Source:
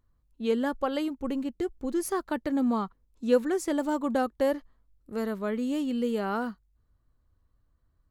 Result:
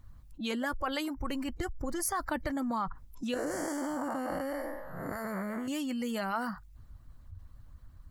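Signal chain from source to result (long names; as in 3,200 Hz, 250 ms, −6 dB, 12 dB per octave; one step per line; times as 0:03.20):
0:03.34–0:05.68: spectrum smeared in time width 341 ms
noise reduction from a noise print of the clip's start 22 dB
low-shelf EQ 69 Hz +11.5 dB
harmonic and percussive parts rebalanced harmonic −12 dB
parametric band 410 Hz −10 dB 0.55 octaves
envelope flattener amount 70%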